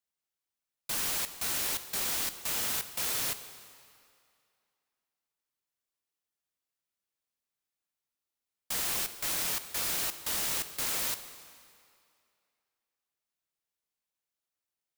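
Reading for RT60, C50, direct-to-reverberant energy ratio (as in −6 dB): 2.4 s, 11.5 dB, 10.5 dB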